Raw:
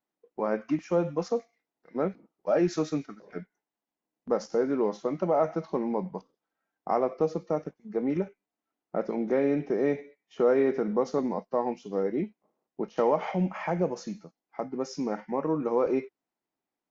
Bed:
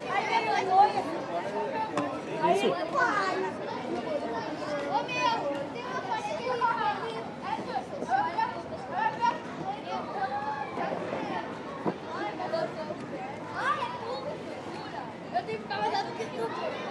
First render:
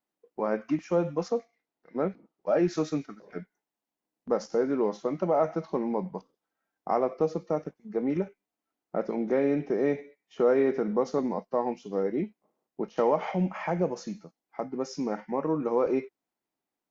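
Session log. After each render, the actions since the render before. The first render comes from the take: 1.3–2.75 air absorption 55 m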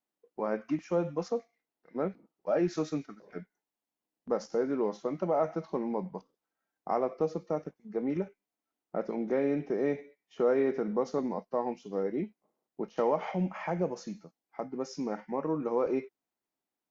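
gain -3.5 dB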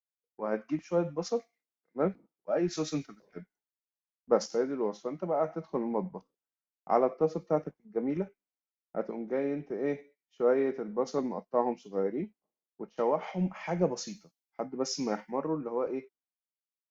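vocal rider within 3 dB 0.5 s; three-band expander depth 100%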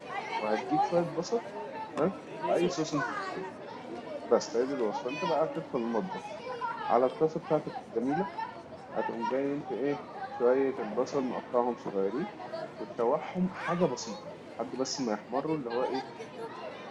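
add bed -8 dB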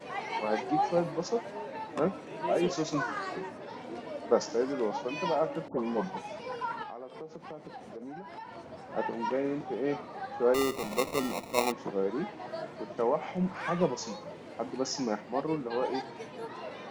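5.68–6.17 dispersion highs, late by 0.117 s, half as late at 1700 Hz; 6.83–8.57 compressor, threshold -40 dBFS; 10.54–11.72 sample-rate reducer 1600 Hz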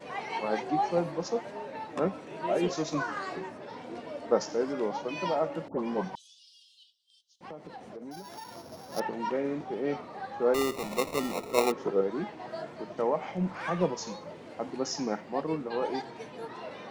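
6.15–7.41 steep high-pass 3000 Hz 96 dB/oct; 8.11–9 sample sorter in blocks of 8 samples; 11.35–12.01 small resonant body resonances 420/1300 Hz, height 13 dB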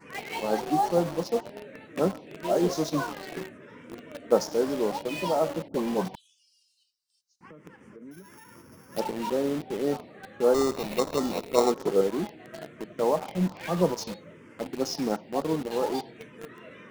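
envelope phaser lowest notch 560 Hz, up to 2600 Hz, full sweep at -25.5 dBFS; in parallel at -4 dB: bit-crush 6-bit

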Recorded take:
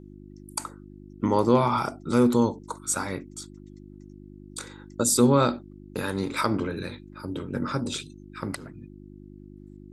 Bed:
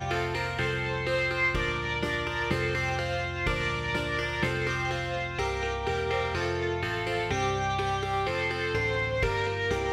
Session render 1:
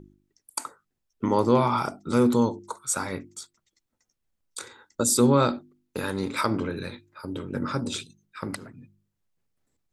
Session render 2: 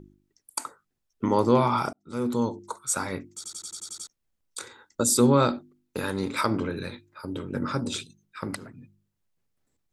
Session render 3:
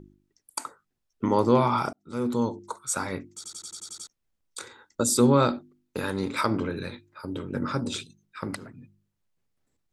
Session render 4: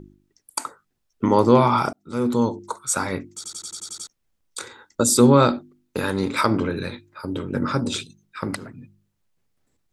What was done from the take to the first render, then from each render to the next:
de-hum 50 Hz, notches 7
1.93–2.68 fade in; 3.35 stutter in place 0.09 s, 8 plays
high shelf 8200 Hz -4.5 dB
gain +5.5 dB

